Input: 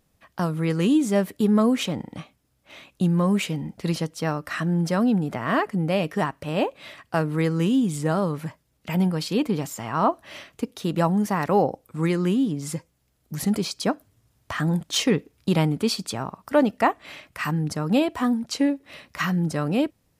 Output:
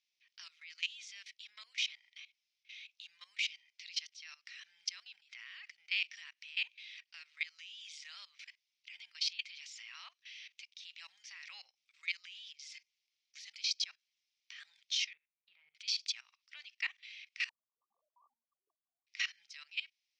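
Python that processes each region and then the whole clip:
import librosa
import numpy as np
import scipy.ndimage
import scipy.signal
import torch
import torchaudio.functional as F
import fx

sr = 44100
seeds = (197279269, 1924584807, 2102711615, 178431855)

y = fx.chain(x, sr, fx.lowpass(hz=1400.0, slope=12),
    fx.tilt_shelf(db=9.0, hz=750.0),
    fx.comb_fb(f0_hz=51.0, decay_s=0.28, harmonics='all', damping=0.0, mix_pct=70), at=(15.13, 15.75))
y = fx.chain(y, sr, fx.sine_speech(),
    fx.brickwall_lowpass(high_hz=1200.0), at=(17.49, 19.07))
y = scipy.signal.sosfilt(scipy.signal.ellip(3, 1.0, 80, [2200.0, 5800.0], 'bandpass', fs=sr, output='sos'), y)
y = fx.level_steps(y, sr, step_db=18)
y = F.gain(torch.from_numpy(y), 3.0).numpy()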